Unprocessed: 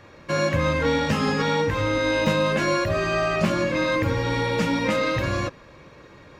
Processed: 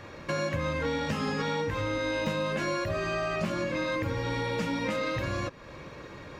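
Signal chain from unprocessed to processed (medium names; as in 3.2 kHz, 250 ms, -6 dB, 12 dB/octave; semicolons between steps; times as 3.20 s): compression 2.5:1, threshold -36 dBFS, peak gain reduction 13 dB; trim +3 dB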